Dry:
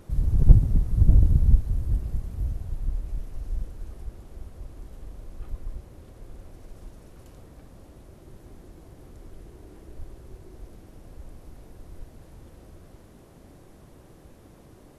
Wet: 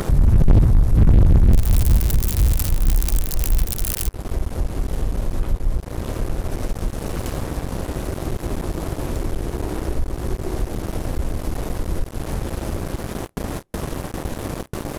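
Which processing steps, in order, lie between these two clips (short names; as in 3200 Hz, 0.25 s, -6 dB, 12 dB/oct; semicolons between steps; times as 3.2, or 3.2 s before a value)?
1.53–4.09 switching spikes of -15 dBFS; gate with hold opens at -41 dBFS; upward compressor, threshold -26 dBFS; sample leveller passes 5; gain -5 dB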